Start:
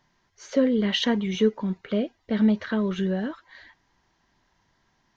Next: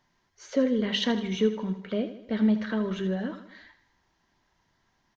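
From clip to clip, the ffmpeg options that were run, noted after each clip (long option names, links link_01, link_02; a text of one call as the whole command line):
ffmpeg -i in.wav -filter_complex "[0:a]bandreject=frequency=50:width_type=h:width=6,bandreject=frequency=100:width_type=h:width=6,bandreject=frequency=150:width_type=h:width=6,bandreject=frequency=200:width_type=h:width=6,asplit=2[link_01][link_02];[link_02]aecho=0:1:79|158|237|316|395:0.251|0.128|0.0653|0.0333|0.017[link_03];[link_01][link_03]amix=inputs=2:normalize=0,volume=-3dB" out.wav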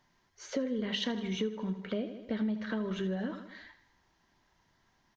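ffmpeg -i in.wav -af "acompressor=threshold=-31dB:ratio=4" out.wav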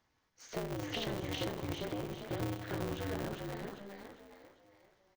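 ffmpeg -i in.wav -filter_complex "[0:a]asplit=6[link_01][link_02][link_03][link_04][link_05][link_06];[link_02]adelay=399,afreqshift=56,volume=-3dB[link_07];[link_03]adelay=798,afreqshift=112,volume=-10.7dB[link_08];[link_04]adelay=1197,afreqshift=168,volume=-18.5dB[link_09];[link_05]adelay=1596,afreqshift=224,volume=-26.2dB[link_10];[link_06]adelay=1995,afreqshift=280,volume=-34dB[link_11];[link_01][link_07][link_08][link_09][link_10][link_11]amix=inputs=6:normalize=0,aeval=exprs='val(0)*sgn(sin(2*PI*100*n/s))':channel_layout=same,volume=-6dB" out.wav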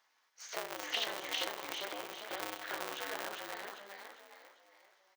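ffmpeg -i in.wav -af "highpass=840,volume=5.5dB" out.wav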